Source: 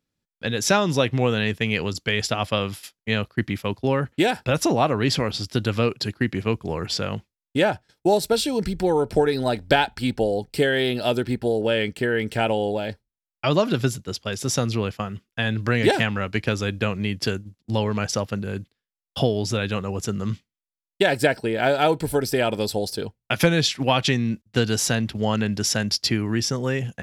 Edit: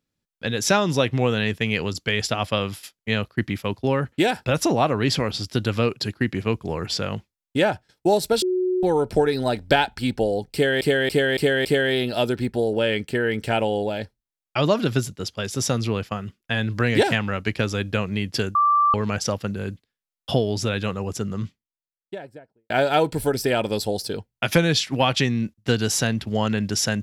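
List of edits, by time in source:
8.42–8.83 s: bleep 367 Hz -19 dBFS
10.53–10.81 s: loop, 5 plays
17.43–17.82 s: bleep 1.17 kHz -14.5 dBFS
19.76–21.58 s: studio fade out

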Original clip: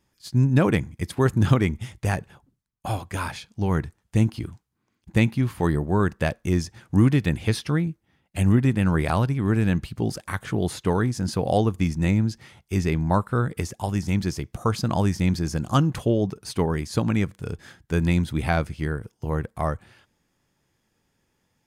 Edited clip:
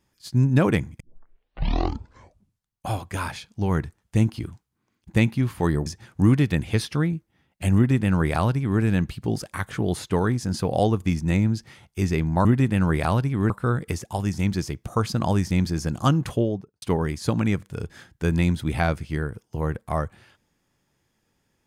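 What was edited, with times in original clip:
1.00 s: tape start 1.89 s
5.86–6.60 s: delete
8.50–9.55 s: copy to 13.19 s
16.00–16.51 s: studio fade out

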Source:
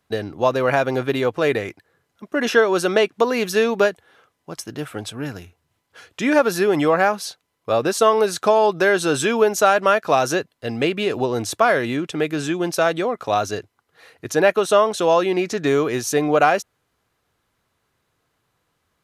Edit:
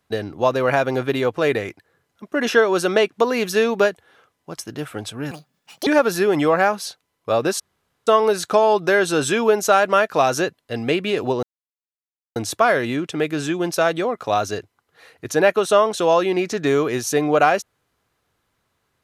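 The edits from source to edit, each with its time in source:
5.31–6.27 s: speed 172%
8.00 s: insert room tone 0.47 s
11.36 s: insert silence 0.93 s

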